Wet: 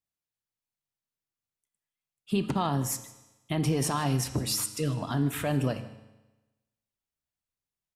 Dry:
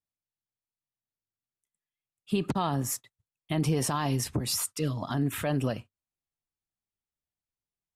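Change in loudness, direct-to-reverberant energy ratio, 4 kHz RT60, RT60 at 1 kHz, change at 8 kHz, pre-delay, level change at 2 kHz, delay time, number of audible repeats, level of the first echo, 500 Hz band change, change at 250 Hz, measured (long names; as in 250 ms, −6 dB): +0.5 dB, 8.5 dB, 1.1 s, 1.1 s, +0.5 dB, 9 ms, +0.5 dB, 155 ms, 1, −20.5 dB, +0.5 dB, +0.5 dB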